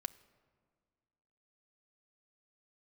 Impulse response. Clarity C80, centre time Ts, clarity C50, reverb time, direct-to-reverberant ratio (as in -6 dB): 20.0 dB, 3 ms, 18.5 dB, 1.8 s, 10.5 dB